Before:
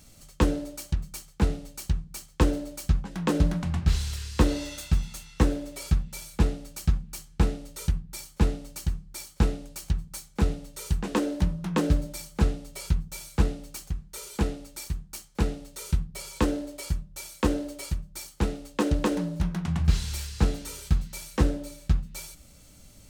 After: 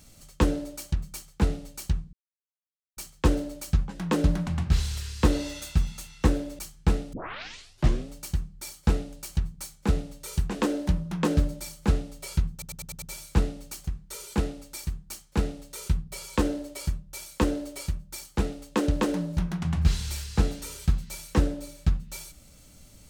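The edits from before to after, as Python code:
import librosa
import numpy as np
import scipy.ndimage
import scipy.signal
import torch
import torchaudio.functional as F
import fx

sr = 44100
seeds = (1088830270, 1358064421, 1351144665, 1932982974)

y = fx.edit(x, sr, fx.insert_silence(at_s=2.13, length_s=0.84),
    fx.cut(start_s=5.75, length_s=1.37),
    fx.tape_start(start_s=7.66, length_s=0.98),
    fx.stutter(start_s=13.05, slice_s=0.1, count=6), tone=tone)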